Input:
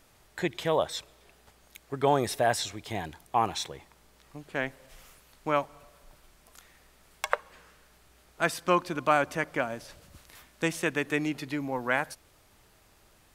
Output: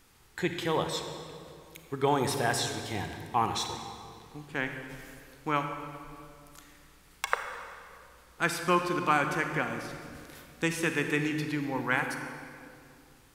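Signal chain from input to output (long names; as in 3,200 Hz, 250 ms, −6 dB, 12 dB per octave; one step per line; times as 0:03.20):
parametric band 620 Hz −14 dB 0.29 octaves
on a send: convolution reverb RT60 2.4 s, pre-delay 30 ms, DRR 5.5 dB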